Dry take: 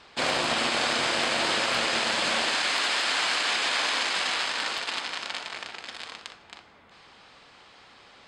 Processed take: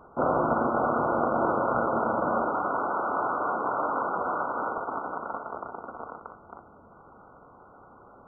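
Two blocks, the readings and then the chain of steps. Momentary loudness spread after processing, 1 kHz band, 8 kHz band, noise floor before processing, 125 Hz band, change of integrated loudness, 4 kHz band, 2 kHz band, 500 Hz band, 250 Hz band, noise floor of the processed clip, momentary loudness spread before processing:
14 LU, +4.5 dB, under -40 dB, -54 dBFS, +6.5 dB, -2.5 dB, under -40 dB, -10.0 dB, +5.5 dB, +6.0 dB, -53 dBFS, 14 LU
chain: sorted samples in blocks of 16 samples; brick-wall FIR low-pass 1.5 kHz; trim +6 dB

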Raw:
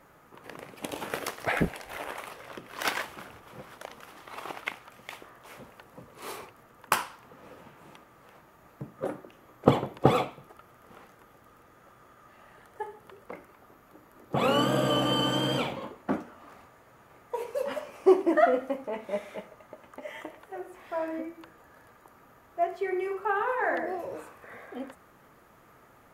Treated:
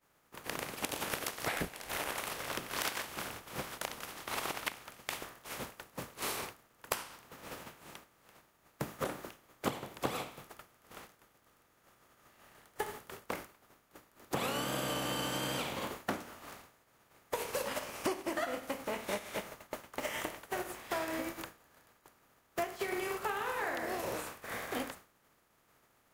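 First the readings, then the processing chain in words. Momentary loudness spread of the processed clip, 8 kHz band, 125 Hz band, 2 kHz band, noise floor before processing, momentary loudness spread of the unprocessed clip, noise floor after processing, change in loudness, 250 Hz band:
15 LU, +3.5 dB, -11.0 dB, -4.0 dB, -58 dBFS, 21 LU, -70 dBFS, -9.0 dB, -10.0 dB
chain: spectral contrast reduction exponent 0.57; expander -44 dBFS; compression 8:1, threshold -41 dBFS, peak gain reduction 27 dB; trim +7.5 dB

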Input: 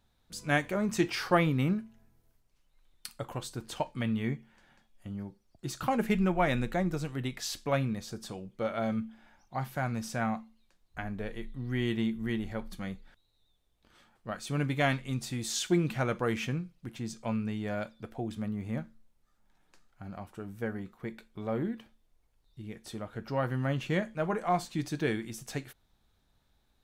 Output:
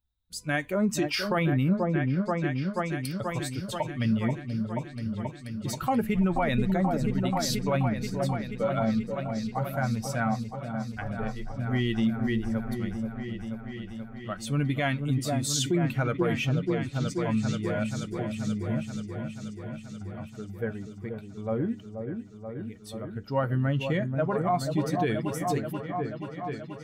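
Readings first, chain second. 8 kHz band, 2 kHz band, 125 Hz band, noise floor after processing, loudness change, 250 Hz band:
+4.5 dB, +2.0 dB, +6.0 dB, -44 dBFS, +3.5 dB, +5.5 dB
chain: expander on every frequency bin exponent 1.5; delay with an opening low-pass 482 ms, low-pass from 750 Hz, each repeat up 1 oct, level -6 dB; peak limiter -25.5 dBFS, peak gain reduction 12 dB; trim +8.5 dB

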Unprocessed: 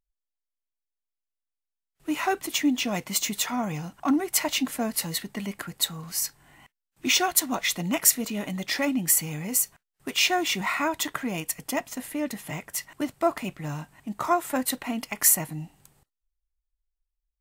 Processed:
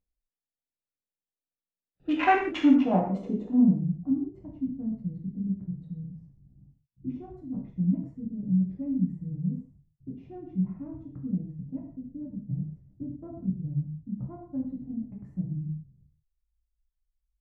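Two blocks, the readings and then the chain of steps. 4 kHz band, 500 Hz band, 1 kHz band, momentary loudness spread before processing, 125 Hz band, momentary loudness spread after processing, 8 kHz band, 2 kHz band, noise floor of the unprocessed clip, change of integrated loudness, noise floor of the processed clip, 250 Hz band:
under -20 dB, -5.5 dB, -3.0 dB, 13 LU, +6.0 dB, 17 LU, under -40 dB, -8.5 dB, under -85 dBFS, -4.0 dB, under -85 dBFS, +2.5 dB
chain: local Wiener filter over 41 samples; low-pass sweep 13 kHz -> 140 Hz, 1.29–3.99 s; gated-style reverb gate 200 ms falling, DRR -2.5 dB

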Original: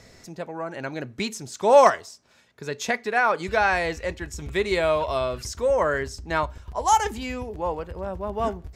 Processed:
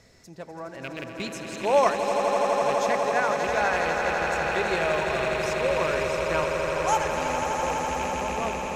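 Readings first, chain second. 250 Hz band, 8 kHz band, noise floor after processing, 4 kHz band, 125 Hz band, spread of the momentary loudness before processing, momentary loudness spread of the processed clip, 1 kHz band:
-1.0 dB, -1.0 dB, -42 dBFS, 0.0 dB, -1.5 dB, 13 LU, 11 LU, -1.0 dB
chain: rattle on loud lows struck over -32 dBFS, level -18 dBFS; echo with a slow build-up 83 ms, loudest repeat 8, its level -8.5 dB; trim -6 dB

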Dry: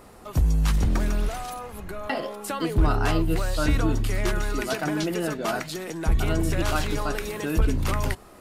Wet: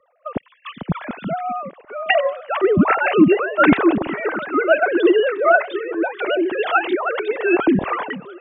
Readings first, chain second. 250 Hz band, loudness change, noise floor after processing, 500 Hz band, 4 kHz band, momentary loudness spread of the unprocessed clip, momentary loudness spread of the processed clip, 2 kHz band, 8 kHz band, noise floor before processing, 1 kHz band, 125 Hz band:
+9.5 dB, +8.0 dB, -56 dBFS, +12.0 dB, +2.5 dB, 8 LU, 15 LU, +11.5 dB, under -40 dB, -48 dBFS, +10.0 dB, -5.0 dB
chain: formants replaced by sine waves; repeats whose band climbs or falls 407 ms, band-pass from 190 Hz, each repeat 1.4 oct, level -8 dB; three bands expanded up and down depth 70%; trim +4.5 dB

